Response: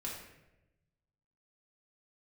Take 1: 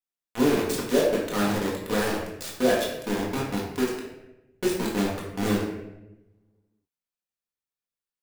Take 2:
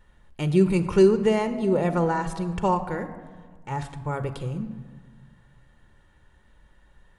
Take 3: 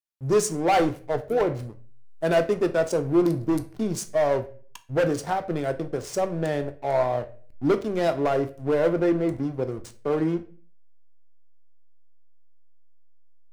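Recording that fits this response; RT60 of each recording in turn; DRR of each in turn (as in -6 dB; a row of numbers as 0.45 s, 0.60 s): 1; 0.95 s, 1.6 s, 0.45 s; -4.5 dB, 8.5 dB, 7.5 dB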